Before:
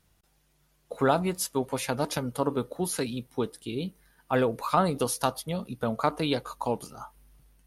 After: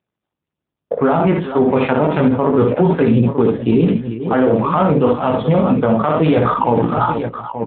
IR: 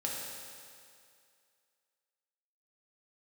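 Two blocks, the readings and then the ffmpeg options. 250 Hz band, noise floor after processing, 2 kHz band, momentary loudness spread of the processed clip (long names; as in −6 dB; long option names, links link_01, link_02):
+17.0 dB, −83 dBFS, +10.0 dB, 4 LU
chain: -af "agate=range=-46dB:threshold=-54dB:ratio=16:detection=peak,lowpass=3100,areverse,acompressor=threshold=-35dB:ratio=12,areverse,flanger=delay=17.5:depth=2.6:speed=0.29,crystalizer=i=2:c=0,adynamicsmooth=sensitivity=7:basefreq=1400,aecho=1:1:58|100|428|879:0.562|0.15|0.188|0.224,alimiter=level_in=35.5dB:limit=-1dB:release=50:level=0:latency=1,volume=-4dB" -ar 8000 -c:a libopencore_amrnb -b:a 10200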